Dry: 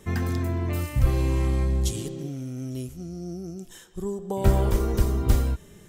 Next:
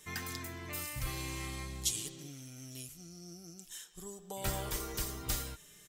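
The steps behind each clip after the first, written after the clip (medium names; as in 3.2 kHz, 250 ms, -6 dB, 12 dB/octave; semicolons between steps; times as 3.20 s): tilt shelf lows -10 dB, about 1.2 kHz; comb 6.6 ms, depth 39%; trim -8.5 dB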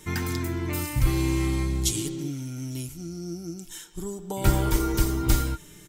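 bass shelf 300 Hz +12 dB; small resonant body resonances 320/910/1400/2200 Hz, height 10 dB; trim +6 dB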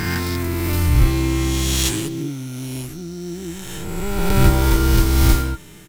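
reverse spectral sustain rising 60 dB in 1.92 s; in parallel at -4.5 dB: sample-rate reducer 9.8 kHz, jitter 0%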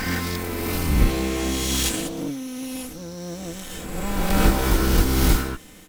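comb filter that takes the minimum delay 3.9 ms; trim -1.5 dB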